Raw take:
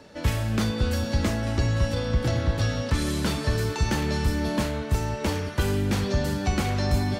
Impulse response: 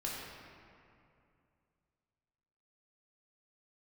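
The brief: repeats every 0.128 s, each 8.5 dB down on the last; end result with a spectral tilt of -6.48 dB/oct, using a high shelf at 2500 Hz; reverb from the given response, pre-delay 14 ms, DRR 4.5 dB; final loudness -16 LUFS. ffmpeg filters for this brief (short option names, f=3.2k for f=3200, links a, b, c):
-filter_complex "[0:a]highshelf=f=2.5k:g=-5,aecho=1:1:128|256|384|512:0.376|0.143|0.0543|0.0206,asplit=2[a][b];[1:a]atrim=start_sample=2205,adelay=14[c];[b][c]afir=irnorm=-1:irlink=0,volume=-7dB[d];[a][d]amix=inputs=2:normalize=0,volume=8dB"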